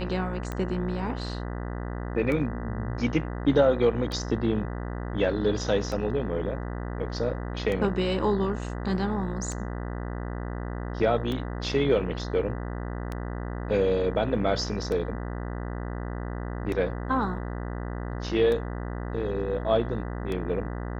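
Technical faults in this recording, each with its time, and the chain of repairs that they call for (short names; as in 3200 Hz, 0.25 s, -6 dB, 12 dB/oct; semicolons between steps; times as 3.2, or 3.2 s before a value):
buzz 60 Hz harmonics 33 -33 dBFS
tick 33 1/3 rpm -19 dBFS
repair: de-click; de-hum 60 Hz, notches 33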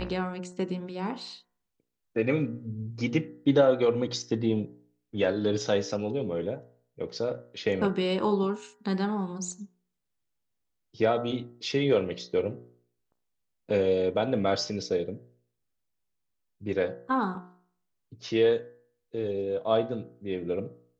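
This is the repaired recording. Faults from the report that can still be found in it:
none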